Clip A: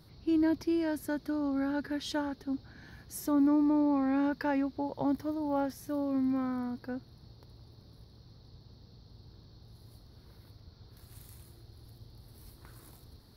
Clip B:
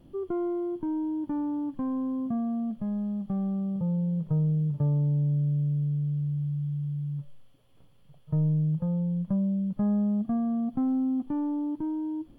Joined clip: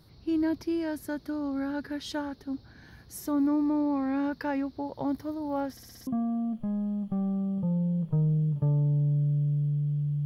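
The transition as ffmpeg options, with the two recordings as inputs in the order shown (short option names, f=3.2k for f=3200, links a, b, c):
-filter_complex "[0:a]apad=whole_dur=10.25,atrim=end=10.25,asplit=6[a][b][c][d][e][f];[a]atrim=end=5.772[g];[b]atrim=start=5.708:end=5.772[h];[c]atrim=start=5.708:end=5.772[i];[d]atrim=start=5.708:end=5.772[j];[e]atrim=start=5.708:end=5.772[k];[f]atrim=start=5.708:end=5.772[l];[1:a]atrim=start=2.248:end=6.43[m];[g][h]acrossfade=d=0.004:c1=hsin:c2=hsin[n];[n][i]acrossfade=d=0.004:c1=hsin:c2=hsin[o];[o][j]acrossfade=d=0.004:c1=hsin:c2=hsin[p];[p][k]acrossfade=d=0.004:c1=hsin:c2=hsin[q];[q][l]acrossfade=d=0.004:c1=hsin:c2=hsin[r];[r][m]acrossfade=d=0.004:c1=hsin:c2=hsin"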